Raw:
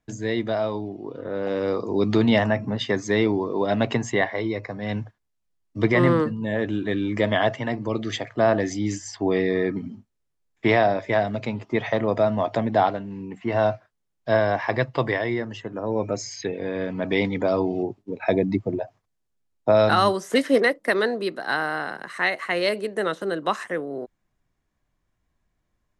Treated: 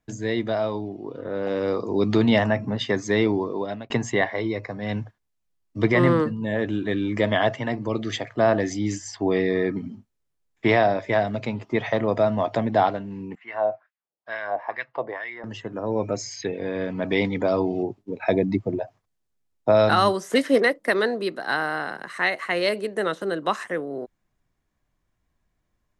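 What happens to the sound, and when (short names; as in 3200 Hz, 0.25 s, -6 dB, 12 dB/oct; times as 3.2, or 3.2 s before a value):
3.42–3.9 fade out
13.35–15.44 wah 2.2 Hz 550–2200 Hz, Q 2.2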